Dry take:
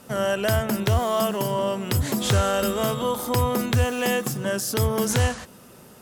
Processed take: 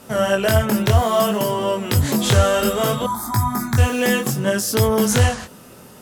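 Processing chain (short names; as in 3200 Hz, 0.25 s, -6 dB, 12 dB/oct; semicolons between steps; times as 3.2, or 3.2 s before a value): chorus 0.62 Hz, delay 18 ms, depth 5.9 ms; 3.06–3.78 fixed phaser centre 1200 Hz, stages 4; gain +8 dB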